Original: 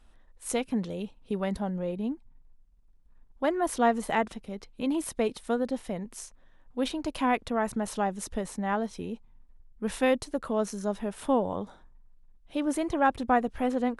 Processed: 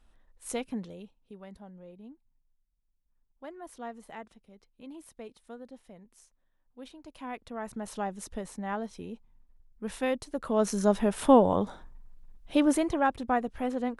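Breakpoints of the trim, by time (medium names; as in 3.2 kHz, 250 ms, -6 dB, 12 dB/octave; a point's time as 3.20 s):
0.67 s -4.5 dB
1.34 s -17 dB
7.02 s -17 dB
7.96 s -5 dB
10.26 s -5 dB
10.78 s +6.5 dB
12.58 s +6.5 dB
13.12 s -3.5 dB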